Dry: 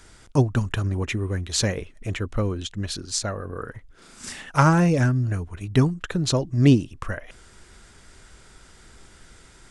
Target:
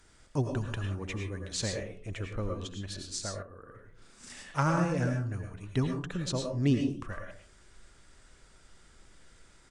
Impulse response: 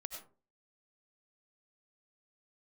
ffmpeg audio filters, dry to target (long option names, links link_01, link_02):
-filter_complex "[0:a]aresample=22050,aresample=44100[link_01];[1:a]atrim=start_sample=2205,asetrate=39690,aresample=44100[link_02];[link_01][link_02]afir=irnorm=-1:irlink=0,asettb=1/sr,asplit=3[link_03][link_04][link_05];[link_03]atrim=end=3.424[link_06];[link_04]atrim=start=3.42:end=4.3,asetpts=PTS-STARTPTS,afade=type=in:duration=0.004:curve=qsin,afade=type=out:start_time=0.876:duration=0.004:curve=qsin,acompressor=threshold=-39dB:ratio=6[link_07];[link_05]atrim=start=4.296[link_08];[link_06][link_07]acrossfade=duration=0.004:curve1=hsin:curve2=qsin[link_09];[link_09][link_08]acrossfade=duration=0.004:curve1=qsin:curve2=hsin,volume=-7dB"